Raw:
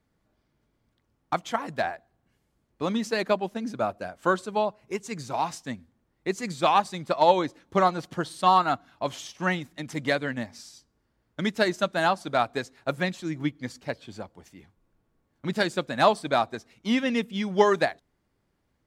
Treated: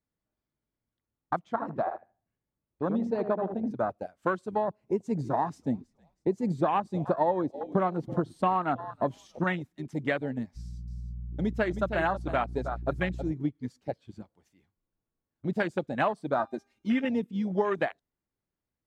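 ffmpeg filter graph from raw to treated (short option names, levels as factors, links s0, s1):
-filter_complex "[0:a]asettb=1/sr,asplit=3[s0][s1][s2];[s0]atrim=end=1.394[s3];[s1]atrim=start=1.39:end=3.71,asetpts=PTS-STARTPTS,afade=t=in:d=0.004:c=qsin,afade=t=out:st=2.316:d=0.004:c=qsin,aemphasis=mode=reproduction:type=75kf,asplit=2[s4][s5];[s5]adelay=77,lowpass=f=1100:p=1,volume=0.501,asplit=2[s6][s7];[s7]adelay=77,lowpass=f=1100:p=1,volume=0.37,asplit=2[s8][s9];[s9]adelay=77,lowpass=f=1100:p=1,volume=0.37,asplit=2[s10][s11];[s11]adelay=77,lowpass=f=1100:p=1,volume=0.37[s12];[s4][s6][s8][s10][s12]amix=inputs=5:normalize=0,atrim=end_sample=102312[s13];[s2]atrim=start=3.706[s14];[s3][s13]acrossfade=d=0.004:c1=hsin:c2=qsin[s15];[s15][s14]acrossfade=d=0.004:c1=qsin:c2=hsin,asettb=1/sr,asplit=3[s16][s17][s18];[s16]atrim=end=4.684[s19];[s17]atrim=start=4.68:end=9.44,asetpts=PTS-STARTPTS,afade=t=in:d=0.004:c=qsin,afade=t=out:st=4.756:d=0.004:c=qsin,equalizer=f=240:w=0.36:g=8,asplit=4[s20][s21][s22][s23];[s21]adelay=322,afreqshift=-61,volume=0.0891[s24];[s22]adelay=644,afreqshift=-122,volume=0.0331[s25];[s23]adelay=966,afreqshift=-183,volume=0.0122[s26];[s20][s24][s25][s26]amix=inputs=4:normalize=0,atrim=end_sample=209916[s27];[s18]atrim=start=9.436[s28];[s19][s27]acrossfade=d=0.004:c1=hsin:c2=qsin[s29];[s29][s28]acrossfade=d=0.004:c1=qsin:c2=hsin,asettb=1/sr,asplit=3[s30][s31][s32];[s30]atrim=end=10.564[s33];[s31]atrim=start=10.56:end=13.32,asetpts=PTS-STARTPTS,afade=t=in:d=0.004:c=qsin,afade=t=out:st=2.756:d=0.004:c=qsin,aeval=exprs='val(0)+0.0141*(sin(2*PI*60*n/s)+sin(2*PI*2*60*n/s)/2+sin(2*PI*3*60*n/s)/3+sin(2*PI*4*60*n/s)/4+sin(2*PI*5*60*n/s)/5)':c=same,aecho=1:1:315:0.316,atrim=end_sample=121716[s34];[s32]atrim=start=13.316[s35];[s33][s34]acrossfade=d=0.004:c1=hsin:c2=qsin[s36];[s36][s35]acrossfade=d=0.004:c1=qsin:c2=hsin,asettb=1/sr,asplit=3[s37][s38][s39];[s37]atrim=end=16.394[s40];[s38]atrim=start=16.39:end=17.05,asetpts=PTS-STARTPTS,afade=t=in:d=0.004:c=qsin,afade=t=out:st=0.656:d=0.004:c=qsin,aecho=1:1:3.3:0.77,atrim=end_sample=29106,bandreject=f=400:t=h:w=4,bandreject=f=800:t=h:w=4,bandreject=f=1200:t=h:w=4,bandreject=f=1600:t=h:w=4,bandreject=f=2000:t=h:w=4,bandreject=f=2400:t=h:w=4,bandreject=f=2800:t=h:w=4,bandreject=f=3200:t=h:w=4,bandreject=f=3600:t=h:w=4,bandreject=f=4000:t=h:w=4,bandreject=f=4400:t=h:w=4,bandreject=f=4800:t=h:w=4,bandreject=f=5200:t=h:w=4,bandreject=f=5600:t=h:w=4,bandreject=f=6000:t=h:w=4,bandreject=f=6400:t=h:w=4,bandreject=f=6800:t=h:w=4,bandreject=f=7200:t=h:w=4,bandreject=f=7600:t=h:w=4,bandreject=f=8000:t=h:w=4,bandreject=f=8400:t=h:w=4,bandreject=f=8800:t=h:w=4,bandreject=f=9200:t=h:w=4,bandreject=f=9600:t=h:w=4,bandreject=f=10000:t=h:w=4,bandreject=f=10400:t=h:w=4,bandreject=f=10800:t=h:w=4[s41];[s39]atrim=start=17.046[s42];[s40][s41]acrossfade=d=0.004:c1=hsin:c2=qsin[s43];[s43][s42]acrossfade=d=0.004:c1=qsin:c2=hsin,afwtdn=0.0398,acompressor=threshold=0.0708:ratio=6"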